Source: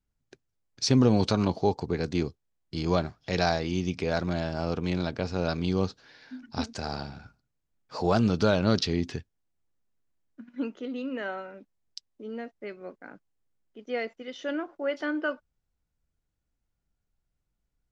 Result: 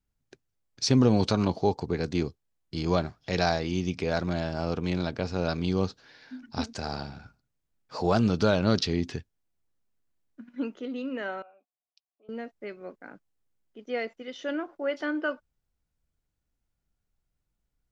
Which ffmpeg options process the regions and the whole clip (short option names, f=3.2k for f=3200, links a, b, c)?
-filter_complex "[0:a]asettb=1/sr,asplit=3[a][b][c];[a]atrim=end=11.424[d];[b]atrim=start=11.42:end=12.29,asetpts=PTS-STARTPTS,afade=t=in:d=0.004:c=qsin,afade=t=out:st=0.866:d=0.004:c=qsin,asplit=3[e][f][g];[e]bandpass=f=730:t=q:w=8,volume=0dB[h];[f]bandpass=f=1.09k:t=q:w=8,volume=-6dB[i];[g]bandpass=f=2.44k:t=q:w=8,volume=-9dB[j];[h][i][j]amix=inputs=3:normalize=0,lowshelf=f=340:g=-6.5[k];[c]atrim=start=12.286[l];[d][k]acrossfade=d=0.004:c1=hsin:c2=qsin[m];[m][l]acrossfade=d=0.004:c1=qsin:c2=hsin"